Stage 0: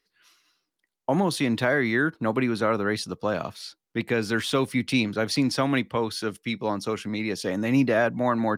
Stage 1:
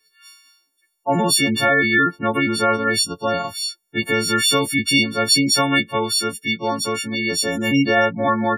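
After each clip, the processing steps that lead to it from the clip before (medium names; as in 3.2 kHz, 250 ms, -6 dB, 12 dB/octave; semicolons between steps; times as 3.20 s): partials quantised in pitch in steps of 4 st; spectral gate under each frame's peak -25 dB strong; trim +3.5 dB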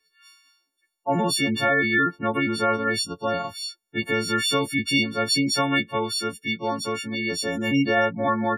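treble shelf 6.2 kHz -8.5 dB; trim -4 dB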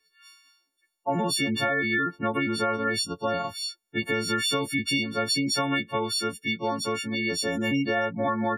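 compression, threshold -22 dBFS, peak gain reduction 6 dB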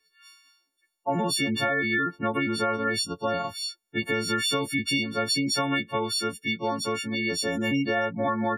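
no audible change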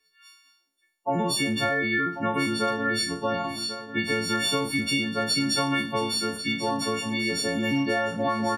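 spectral sustain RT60 0.40 s; on a send: feedback delay 1092 ms, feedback 27%, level -11.5 dB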